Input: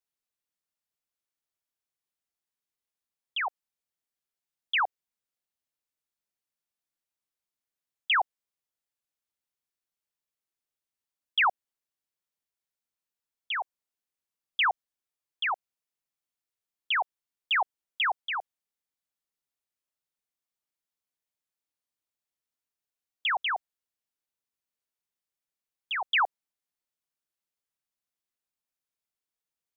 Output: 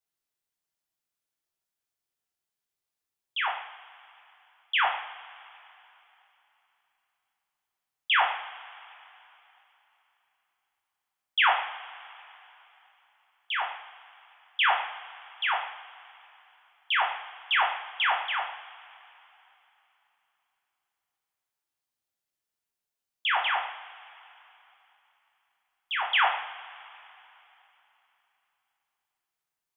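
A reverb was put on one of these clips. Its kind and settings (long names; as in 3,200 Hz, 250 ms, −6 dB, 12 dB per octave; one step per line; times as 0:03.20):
coupled-rooms reverb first 0.7 s, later 3.4 s, from −18 dB, DRR −1 dB
level −1 dB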